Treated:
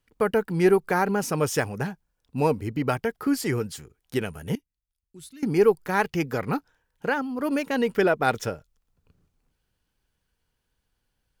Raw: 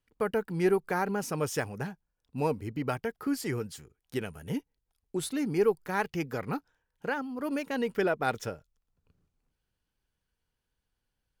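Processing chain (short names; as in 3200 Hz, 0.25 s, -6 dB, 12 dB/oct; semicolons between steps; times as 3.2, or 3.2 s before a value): 4.55–5.43 passive tone stack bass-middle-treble 6-0-2; gain +6.5 dB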